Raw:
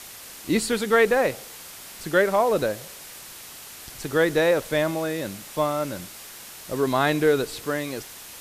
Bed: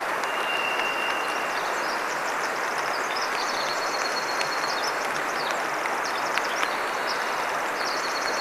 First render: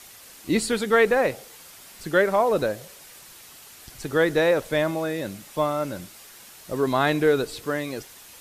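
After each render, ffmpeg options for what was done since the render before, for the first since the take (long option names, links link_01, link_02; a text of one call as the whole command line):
ffmpeg -i in.wav -af "afftdn=noise_reduction=6:noise_floor=-42" out.wav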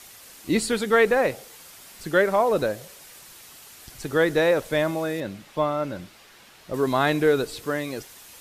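ffmpeg -i in.wav -filter_complex "[0:a]asettb=1/sr,asplit=3[link_01][link_02][link_03];[link_01]atrim=end=5.204[link_04];[link_02]atrim=start=5.2:end=6.74,asetpts=PTS-STARTPTS,afade=type=in:duration=0.004:curve=qsin,afade=type=out:start_time=1.536:duration=0.004:curve=qsin,acrossover=split=4700[link_05][link_06];[link_06]acompressor=threshold=-58dB:ratio=4:attack=1:release=60[link_07];[link_05][link_07]amix=inputs=2:normalize=0[link_08];[link_03]atrim=start=6.736[link_09];[link_04][link_08]acrossfade=duration=0.004:curve1=hsin:curve2=qsin[link_10];[link_10][link_09]acrossfade=duration=0.004:curve1=qsin:curve2=hsin" out.wav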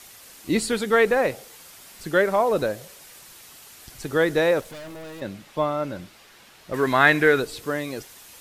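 ffmpeg -i in.wav -filter_complex "[0:a]asettb=1/sr,asplit=3[link_01][link_02][link_03];[link_01]atrim=end=4.614[link_04];[link_02]atrim=start=4.61:end=5.22,asetpts=PTS-STARTPTS,afade=type=in:duration=0.004:curve=qsin,afade=type=out:start_time=0.606:duration=0.004:curve=qsin,aeval=exprs='(tanh(70.8*val(0)+0.2)-tanh(0.2))/70.8':channel_layout=same[link_05];[link_03]atrim=start=5.216[link_06];[link_04][link_05]acrossfade=duration=0.004:curve1=hsin:curve2=qsin[link_07];[link_07][link_06]acrossfade=duration=0.004:curve1=qsin:curve2=hsin,asettb=1/sr,asplit=3[link_08][link_09][link_10];[link_08]atrim=end=6.724[link_11];[link_09]atrim=start=6.72:end=7.4,asetpts=PTS-STARTPTS,afade=type=in:duration=0.004:curve=qsin,afade=type=out:start_time=0.676:duration=0.004:curve=qsin,equalizer=frequency=1800:width=1.4:gain=12[link_12];[link_10]atrim=start=7.396[link_13];[link_11][link_12]acrossfade=duration=0.004:curve1=hsin:curve2=qsin[link_14];[link_14][link_13]acrossfade=duration=0.004:curve1=qsin:curve2=hsin" out.wav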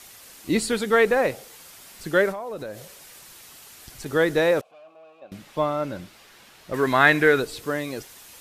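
ffmpeg -i in.wav -filter_complex "[0:a]asettb=1/sr,asplit=3[link_01][link_02][link_03];[link_01]atrim=end=2.314[link_04];[link_02]atrim=start=2.31:end=4.06,asetpts=PTS-STARTPTS,afade=type=in:duration=0.004:curve=qsin,afade=type=out:start_time=1.746:duration=0.004:curve=qsin,acompressor=threshold=-32dB:ratio=4:attack=3.2:release=140:knee=1:detection=peak[link_05];[link_03]atrim=start=4.056[link_06];[link_04][link_05]acrossfade=duration=0.004:curve1=hsin:curve2=qsin[link_07];[link_07][link_06]acrossfade=duration=0.004:curve1=qsin:curve2=hsin,asettb=1/sr,asplit=3[link_08][link_09][link_10];[link_08]atrim=end=4.614[link_11];[link_09]atrim=start=4.61:end=5.32,asetpts=PTS-STARTPTS,afade=type=in:duration=0.004:curve=qsin,afade=type=out:start_time=0.706:duration=0.004:curve=qsin,asplit=3[link_12][link_13][link_14];[link_12]bandpass=frequency=730:width_type=q:width=8,volume=0dB[link_15];[link_13]bandpass=frequency=1090:width_type=q:width=8,volume=-6dB[link_16];[link_14]bandpass=frequency=2440:width_type=q:width=8,volume=-9dB[link_17];[link_15][link_16][link_17]amix=inputs=3:normalize=0[link_18];[link_10]atrim=start=5.316[link_19];[link_11][link_18]acrossfade=duration=0.004:curve1=hsin:curve2=qsin[link_20];[link_20][link_19]acrossfade=duration=0.004:curve1=qsin:curve2=hsin" out.wav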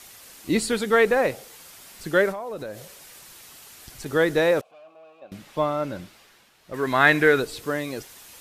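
ffmpeg -i in.wav -filter_complex "[0:a]asplit=3[link_01][link_02][link_03];[link_01]atrim=end=6.5,asetpts=PTS-STARTPTS,afade=type=out:start_time=6.01:duration=0.49:silence=0.375837[link_04];[link_02]atrim=start=6.5:end=6.61,asetpts=PTS-STARTPTS,volume=-8.5dB[link_05];[link_03]atrim=start=6.61,asetpts=PTS-STARTPTS,afade=type=in:duration=0.49:silence=0.375837[link_06];[link_04][link_05][link_06]concat=n=3:v=0:a=1" out.wav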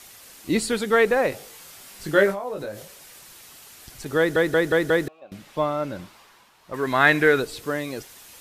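ffmpeg -i in.wav -filter_complex "[0:a]asettb=1/sr,asplit=3[link_01][link_02][link_03];[link_01]atrim=end=1.304[link_04];[link_02]atrim=start=1.3:end=2.83,asetpts=PTS-STARTPTS,afade=type=in:duration=0.004:curve=qsin,afade=type=out:start_time=1.526:duration=0.004:curve=qsin,asplit=2[link_05][link_06];[link_06]adelay=20,volume=-3.5dB[link_07];[link_05][link_07]amix=inputs=2:normalize=0,atrim=end_sample=67473[link_08];[link_03]atrim=start=2.826[link_09];[link_04][link_08]acrossfade=duration=0.004:curve1=hsin:curve2=qsin[link_10];[link_10][link_09]acrossfade=duration=0.004:curve1=qsin:curve2=hsin,asettb=1/sr,asplit=3[link_11][link_12][link_13];[link_11]atrim=end=5.994[link_14];[link_12]atrim=start=5.99:end=6.76,asetpts=PTS-STARTPTS,afade=type=in:duration=0.004:curve=qsin,afade=type=out:start_time=0.766:duration=0.004:curve=qsin,equalizer=frequency=1000:width_type=o:width=0.6:gain=9.5[link_15];[link_13]atrim=start=6.756[link_16];[link_14][link_15]acrossfade=duration=0.004:curve1=hsin:curve2=qsin[link_17];[link_17][link_16]acrossfade=duration=0.004:curve1=qsin:curve2=hsin,asplit=6[link_18][link_19][link_20][link_21][link_22][link_23];[link_18]atrim=end=4.362[link_24];[link_19]atrim=start=4.178:end=4.362[link_25];[link_20]atrim=start=4.178:end=4.362[link_26];[link_21]atrim=start=4.178:end=4.362[link_27];[link_22]atrim=start=4.178:end=4.362[link_28];[link_23]atrim=start=5.078[link_29];[link_24][link_25]acrossfade=duration=0.004:curve1=hsin:curve2=hsin[link_30];[link_30][link_26]acrossfade=duration=0.004:curve1=hsin:curve2=hsin[link_31];[link_31][link_27]acrossfade=duration=0.004:curve1=hsin:curve2=hsin[link_32];[link_32][link_28]acrossfade=duration=0.004:curve1=hsin:curve2=hsin[link_33];[link_33][link_29]acrossfade=duration=0.004:curve1=hsin:curve2=hsin" out.wav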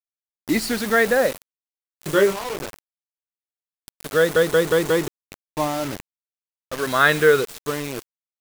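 ffmpeg -i in.wav -af "afftfilt=real='re*pow(10,9/40*sin(2*PI*(0.71*log(max(b,1)*sr/1024/100)/log(2)-(-0.37)*(pts-256)/sr)))':imag='im*pow(10,9/40*sin(2*PI*(0.71*log(max(b,1)*sr/1024/100)/log(2)-(-0.37)*(pts-256)/sr)))':win_size=1024:overlap=0.75,acrusher=bits=4:mix=0:aa=0.000001" out.wav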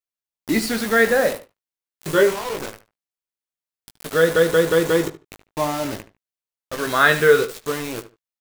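ffmpeg -i in.wav -filter_complex "[0:a]asplit=2[link_01][link_02];[link_02]adelay=18,volume=-7dB[link_03];[link_01][link_03]amix=inputs=2:normalize=0,asplit=2[link_04][link_05];[link_05]adelay=74,lowpass=frequency=3200:poles=1,volume=-13dB,asplit=2[link_06][link_07];[link_07]adelay=74,lowpass=frequency=3200:poles=1,volume=0.21[link_08];[link_04][link_06][link_08]amix=inputs=3:normalize=0" out.wav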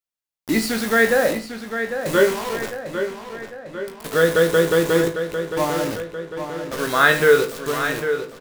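ffmpeg -i in.wav -filter_complex "[0:a]asplit=2[link_01][link_02];[link_02]adelay=36,volume=-12dB[link_03];[link_01][link_03]amix=inputs=2:normalize=0,asplit=2[link_04][link_05];[link_05]adelay=800,lowpass=frequency=4500:poles=1,volume=-8.5dB,asplit=2[link_06][link_07];[link_07]adelay=800,lowpass=frequency=4500:poles=1,volume=0.55,asplit=2[link_08][link_09];[link_09]adelay=800,lowpass=frequency=4500:poles=1,volume=0.55,asplit=2[link_10][link_11];[link_11]adelay=800,lowpass=frequency=4500:poles=1,volume=0.55,asplit=2[link_12][link_13];[link_13]adelay=800,lowpass=frequency=4500:poles=1,volume=0.55,asplit=2[link_14][link_15];[link_15]adelay=800,lowpass=frequency=4500:poles=1,volume=0.55,asplit=2[link_16][link_17];[link_17]adelay=800,lowpass=frequency=4500:poles=1,volume=0.55[link_18];[link_04][link_06][link_08][link_10][link_12][link_14][link_16][link_18]amix=inputs=8:normalize=0" out.wav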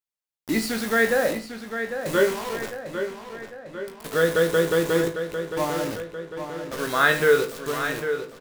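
ffmpeg -i in.wav -af "volume=-4dB" out.wav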